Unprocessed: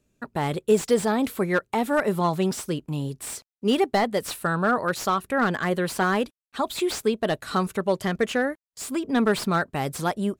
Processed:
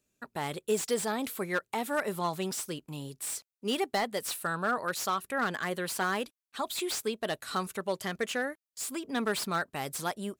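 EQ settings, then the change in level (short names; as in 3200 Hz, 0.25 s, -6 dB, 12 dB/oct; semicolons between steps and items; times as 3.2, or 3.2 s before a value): tilt +2 dB/oct; -7.0 dB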